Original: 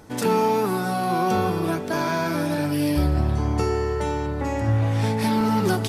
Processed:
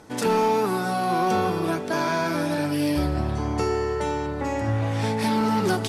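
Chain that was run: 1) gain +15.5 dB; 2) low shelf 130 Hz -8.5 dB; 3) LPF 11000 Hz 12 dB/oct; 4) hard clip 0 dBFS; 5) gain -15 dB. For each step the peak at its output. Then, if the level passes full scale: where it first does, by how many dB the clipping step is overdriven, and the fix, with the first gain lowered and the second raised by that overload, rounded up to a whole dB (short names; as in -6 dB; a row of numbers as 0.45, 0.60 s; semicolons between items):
+6.0, +4.5, +4.5, 0.0, -15.0 dBFS; step 1, 4.5 dB; step 1 +10.5 dB, step 5 -10 dB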